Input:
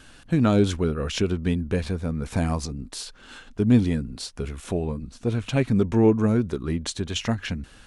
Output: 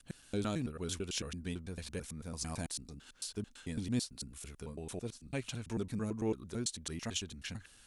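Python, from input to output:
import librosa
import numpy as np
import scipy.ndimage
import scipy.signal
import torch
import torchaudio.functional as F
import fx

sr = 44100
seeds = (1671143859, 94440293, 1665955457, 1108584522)

y = fx.block_reorder(x, sr, ms=111.0, group=3)
y = scipy.signal.lfilter([1.0, -0.8], [1.0], y)
y = F.gain(torch.from_numpy(y), -2.5).numpy()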